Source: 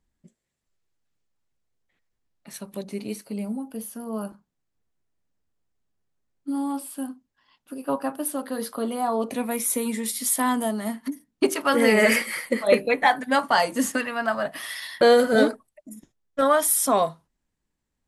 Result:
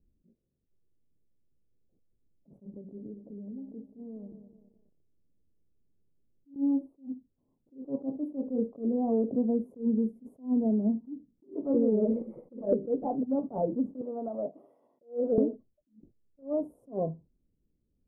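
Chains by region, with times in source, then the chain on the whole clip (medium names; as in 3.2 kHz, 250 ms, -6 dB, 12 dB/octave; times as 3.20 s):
2.70–6.56 s: compression, threshold -45 dBFS + bit-crushed delay 208 ms, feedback 55%, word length 10-bit, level -9 dB
14.01–15.38 s: high-pass 380 Hz + compression, threshold -21 dBFS
whole clip: inverse Chebyshev low-pass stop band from 1.6 kHz, stop band 60 dB; compression 6:1, threshold -28 dBFS; attacks held to a fixed rise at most 230 dB/s; trim +5.5 dB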